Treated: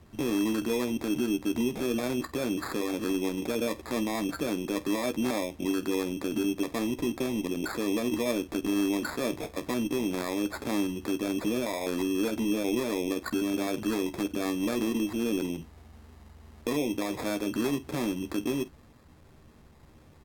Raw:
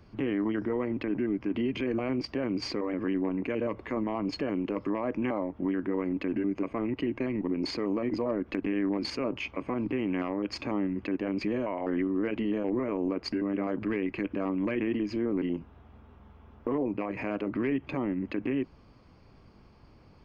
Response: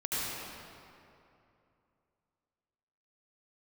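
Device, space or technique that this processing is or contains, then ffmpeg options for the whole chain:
crushed at another speed: -af "aecho=1:1:13|49:0.422|0.15,asetrate=55125,aresample=44100,acrusher=samples=12:mix=1:aa=0.000001,asetrate=35280,aresample=44100"

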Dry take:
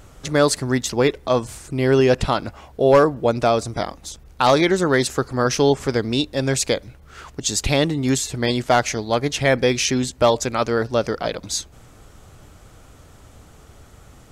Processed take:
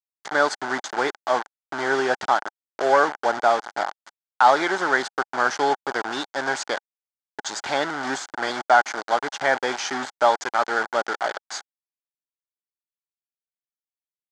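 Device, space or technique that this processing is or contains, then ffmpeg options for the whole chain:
hand-held game console: -af "acrusher=bits=3:mix=0:aa=0.000001,highpass=460,equalizer=frequency=490:width_type=q:width=4:gain=-6,equalizer=frequency=820:width_type=q:width=4:gain=9,equalizer=frequency=1500:width_type=q:width=4:gain=9,equalizer=frequency=2600:width_type=q:width=4:gain=-10,equalizer=frequency=3900:width_type=q:width=4:gain=-6,equalizer=frequency=5500:width_type=q:width=4:gain=-5,lowpass=frequency=5900:width=0.5412,lowpass=frequency=5900:width=1.3066,volume=-2.5dB"

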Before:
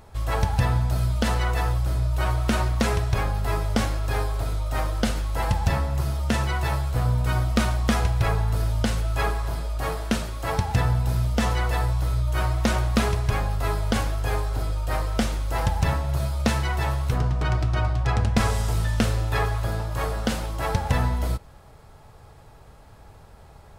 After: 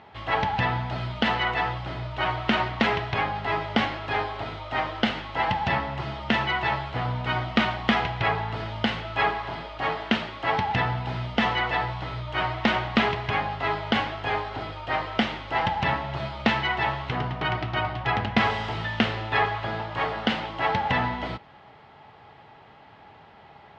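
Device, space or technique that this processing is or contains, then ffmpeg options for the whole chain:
kitchen radio: -af "highpass=180,equalizer=frequency=510:width_type=q:width=4:gain=-5,equalizer=frequency=830:width_type=q:width=4:gain=5,equalizer=frequency=2000:width_type=q:width=4:gain=7,equalizer=frequency=3000:width_type=q:width=4:gain=7,lowpass=frequency=4000:width=0.5412,lowpass=frequency=4000:width=1.3066,volume=1.5dB"

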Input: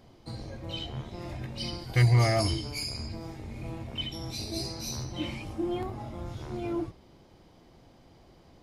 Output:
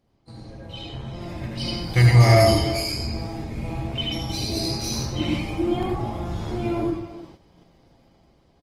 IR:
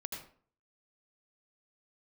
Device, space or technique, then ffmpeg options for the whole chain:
speakerphone in a meeting room: -filter_complex "[1:a]atrim=start_sample=2205[link_01];[0:a][link_01]afir=irnorm=-1:irlink=0,asplit=2[link_02][link_03];[link_03]adelay=310,highpass=300,lowpass=3400,asoftclip=type=hard:threshold=-20.5dB,volume=-13dB[link_04];[link_02][link_04]amix=inputs=2:normalize=0,dynaudnorm=framelen=510:gausssize=5:maxgain=9.5dB,agate=range=-9dB:threshold=-44dB:ratio=16:detection=peak" -ar 48000 -c:a libopus -b:a 24k

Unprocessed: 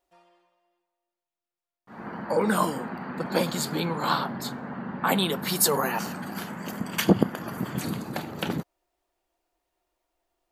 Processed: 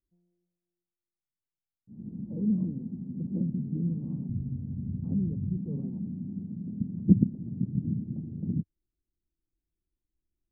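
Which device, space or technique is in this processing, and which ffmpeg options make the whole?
the neighbour's flat through the wall: -filter_complex "[0:a]asettb=1/sr,asplit=3[link_01][link_02][link_03];[link_01]atrim=end=4.294[link_04];[link_02]atrim=start=4.29:end=5.57,asetpts=PTS-STARTPTS,afade=type=in:duration=0.004:curve=qsin,afade=type=out:start_time=1.276:duration=0.004:curve=qsin,lowshelf=frequency=130:width_type=q:width=1.5:gain=12.5[link_05];[link_03]atrim=start=5.566[link_06];[link_04][link_05]acrossfade=duration=0.004:curve1=hsin:curve2=qsin[link_07];[link_07][link_06]acrossfade=duration=0.004:curve1=qsin:curve2=hsin,lowpass=frequency=240:width=0.5412,lowpass=frequency=240:width=1.3066,equalizer=frequency=100:width_type=o:width=1:gain=4,volume=1.5dB"

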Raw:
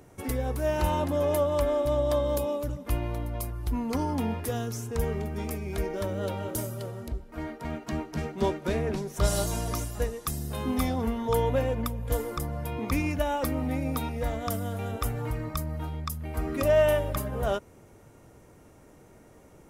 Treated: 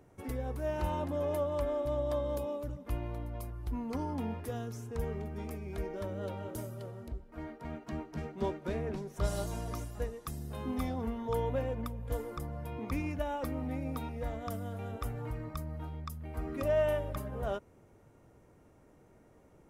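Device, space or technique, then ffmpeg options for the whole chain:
behind a face mask: -af "highshelf=frequency=3000:gain=-7.5,volume=-7dB"

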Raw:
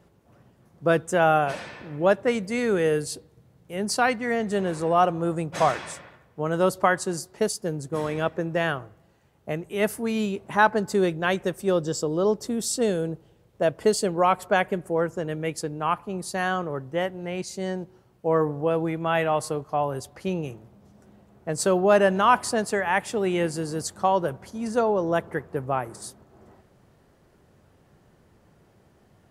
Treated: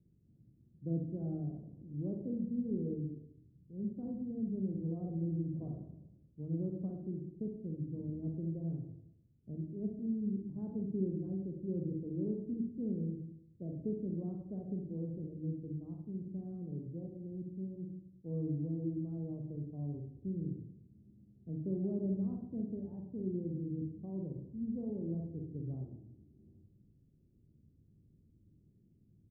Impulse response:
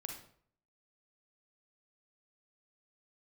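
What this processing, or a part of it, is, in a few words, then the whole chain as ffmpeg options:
next room: -filter_complex "[0:a]lowpass=frequency=290:width=0.5412,lowpass=frequency=290:width=1.3066,asplit=2[link_01][link_02];[link_02]adelay=107,lowpass=frequency=2000:poles=1,volume=-14.5dB,asplit=2[link_03][link_04];[link_04]adelay=107,lowpass=frequency=2000:poles=1,volume=0.42,asplit=2[link_05][link_06];[link_06]adelay=107,lowpass=frequency=2000:poles=1,volume=0.42,asplit=2[link_07][link_08];[link_08]adelay=107,lowpass=frequency=2000:poles=1,volume=0.42[link_09];[link_01][link_03][link_05][link_07][link_09]amix=inputs=5:normalize=0[link_10];[1:a]atrim=start_sample=2205[link_11];[link_10][link_11]afir=irnorm=-1:irlink=0,volume=-4.5dB"

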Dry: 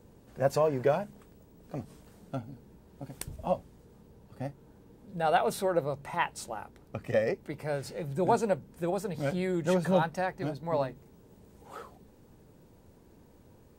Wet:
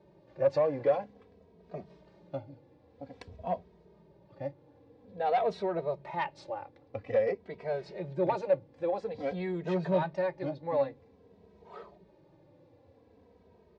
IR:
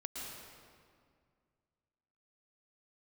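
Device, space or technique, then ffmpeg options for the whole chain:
barber-pole flanger into a guitar amplifier: -filter_complex "[0:a]asplit=2[link_01][link_02];[link_02]adelay=2.8,afreqshift=-0.5[link_03];[link_01][link_03]amix=inputs=2:normalize=1,asoftclip=type=tanh:threshold=-23dB,highpass=97,equalizer=frequency=130:width_type=q:width=4:gain=-7,equalizer=frequency=230:width_type=q:width=4:gain=-8,equalizer=frequency=560:width_type=q:width=4:gain=5,equalizer=frequency=1400:width_type=q:width=4:gain=-8,equalizer=frequency=3000:width_type=q:width=4:gain=-6,lowpass=frequency=4100:width=0.5412,lowpass=frequency=4100:width=1.3066,volume=2dB"

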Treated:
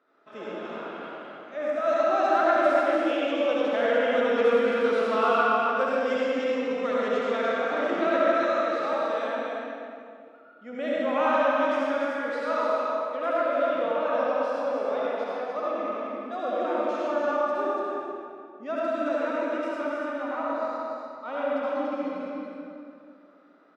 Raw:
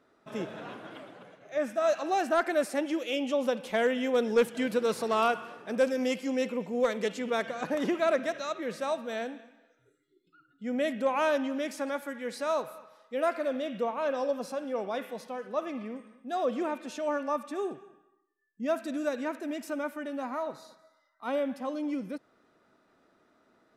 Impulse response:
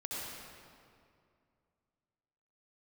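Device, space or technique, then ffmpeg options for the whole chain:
station announcement: -filter_complex "[0:a]highpass=310,lowpass=4000,equalizer=frequency=1300:width_type=o:width=0.32:gain=6,aecho=1:1:224.5|288.6:0.316|0.501[link_01];[1:a]atrim=start_sample=2205[link_02];[link_01][link_02]afir=irnorm=-1:irlink=0,volume=1dB"

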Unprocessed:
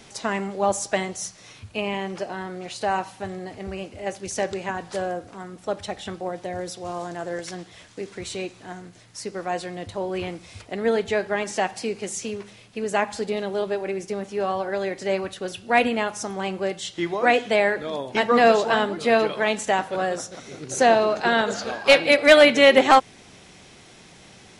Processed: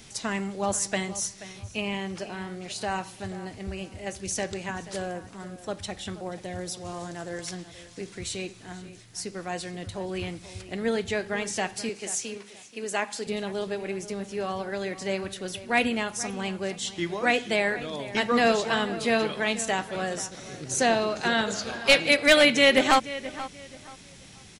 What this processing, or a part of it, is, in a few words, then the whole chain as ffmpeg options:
smiley-face EQ: -filter_complex "[0:a]asettb=1/sr,asplit=3[link_01][link_02][link_03];[link_01]atrim=end=11.894[link_04];[link_02]atrim=start=11.89:end=13.27,asetpts=PTS-STARTPTS,afade=type=in:duration=0.004:curve=qsin,afade=type=out:start_time=1.376:duration=0.004:curve=qsin,highpass=290[link_05];[link_03]atrim=start=13.266[link_06];[link_04][link_05]acrossfade=duration=0.004:curve1=hsin:curve2=qsin[link_07];[link_07][link_06]acrossfade=duration=0.004:curve1=qsin:curve2=hsin,lowshelf=frequency=140:gain=4,equalizer=frequency=670:width_type=o:width=2.6:gain=-7.5,highshelf=frequency=9100:gain=6,asplit=2[link_08][link_09];[link_09]adelay=481,lowpass=frequency=3600:poles=1,volume=-15dB,asplit=2[link_10][link_11];[link_11]adelay=481,lowpass=frequency=3600:poles=1,volume=0.28,asplit=2[link_12][link_13];[link_13]adelay=481,lowpass=frequency=3600:poles=1,volume=0.28[link_14];[link_08][link_10][link_12][link_14]amix=inputs=4:normalize=0"

